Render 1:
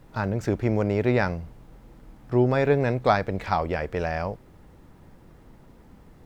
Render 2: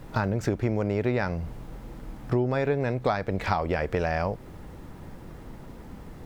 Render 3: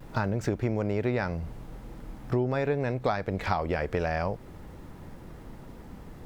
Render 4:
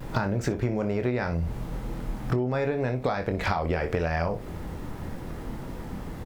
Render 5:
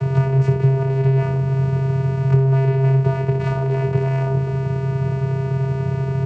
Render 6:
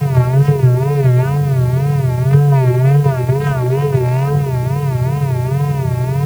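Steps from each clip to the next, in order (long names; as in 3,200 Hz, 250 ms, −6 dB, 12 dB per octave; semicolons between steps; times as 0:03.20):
downward compressor 5 to 1, threshold −31 dBFS, peak gain reduction 15 dB; level +8 dB
pitch vibrato 0.46 Hz 20 cents; level −2 dB
on a send: ambience of single reflections 24 ms −8 dB, 60 ms −13.5 dB; on the sum: downward compressor, threshold −31 dBFS, peak gain reduction 11 dB; level +8 dB
compressor on every frequency bin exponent 0.4; channel vocoder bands 8, square 134 Hz; level +6.5 dB
spectral magnitudes quantised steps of 15 dB; tape wow and flutter 130 cents; in parallel at −7 dB: bit-depth reduction 6 bits, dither triangular; on the sum: level +2 dB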